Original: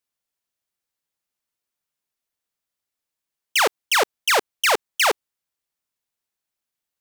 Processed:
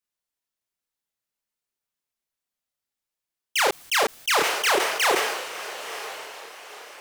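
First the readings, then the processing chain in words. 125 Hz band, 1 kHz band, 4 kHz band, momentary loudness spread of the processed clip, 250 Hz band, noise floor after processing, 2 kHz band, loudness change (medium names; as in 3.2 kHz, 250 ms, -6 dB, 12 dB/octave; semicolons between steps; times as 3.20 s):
no reading, -1.0 dB, -1.5 dB, 19 LU, +3.0 dB, under -85 dBFS, -1.5 dB, -3.0 dB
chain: echo that smears into a reverb 979 ms, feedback 40%, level -11 dB; chorus voices 6, 0.42 Hz, delay 30 ms, depth 4.4 ms; decay stretcher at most 44 dB/s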